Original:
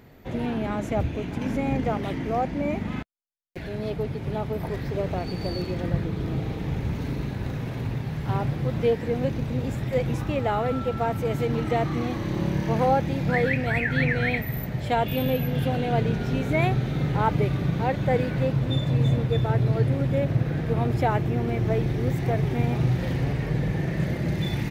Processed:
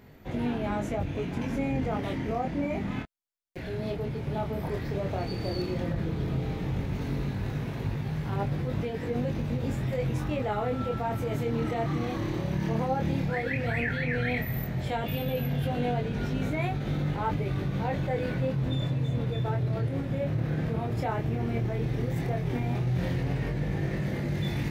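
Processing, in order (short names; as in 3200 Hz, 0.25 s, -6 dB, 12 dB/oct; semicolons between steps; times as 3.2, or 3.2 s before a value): in parallel at +1.5 dB: negative-ratio compressor -27 dBFS, ratio -1; on the sum: chorus 0.12 Hz, delay 20 ms, depth 6.9 ms; gain -7 dB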